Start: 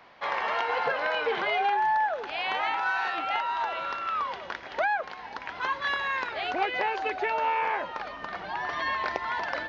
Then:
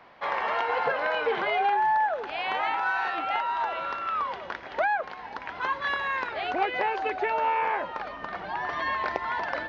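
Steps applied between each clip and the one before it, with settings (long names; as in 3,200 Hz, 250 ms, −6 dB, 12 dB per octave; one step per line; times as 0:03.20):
high-shelf EQ 3,000 Hz −8 dB
level +2 dB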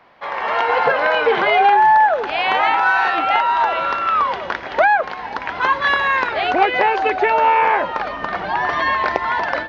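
automatic gain control gain up to 10.5 dB
level +1.5 dB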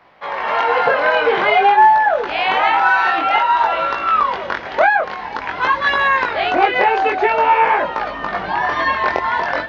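chorus effect 0.5 Hz, delay 18 ms, depth 6.6 ms
level +4 dB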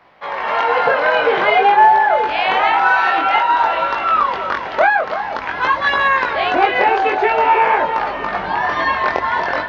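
delay that swaps between a low-pass and a high-pass 323 ms, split 1,400 Hz, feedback 58%, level −9 dB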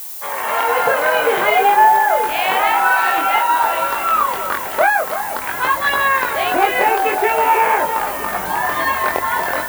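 background noise violet −29 dBFS
level −1 dB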